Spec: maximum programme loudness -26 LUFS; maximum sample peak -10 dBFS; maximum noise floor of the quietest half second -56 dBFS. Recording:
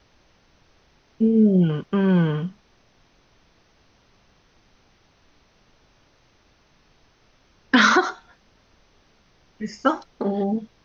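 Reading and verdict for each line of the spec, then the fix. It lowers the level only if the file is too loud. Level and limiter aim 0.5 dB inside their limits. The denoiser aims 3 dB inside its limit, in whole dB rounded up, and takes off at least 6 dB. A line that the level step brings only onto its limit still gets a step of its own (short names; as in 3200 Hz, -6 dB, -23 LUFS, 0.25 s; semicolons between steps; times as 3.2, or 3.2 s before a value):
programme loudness -20.5 LUFS: fail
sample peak -5.5 dBFS: fail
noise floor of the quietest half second -60 dBFS: OK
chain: gain -6 dB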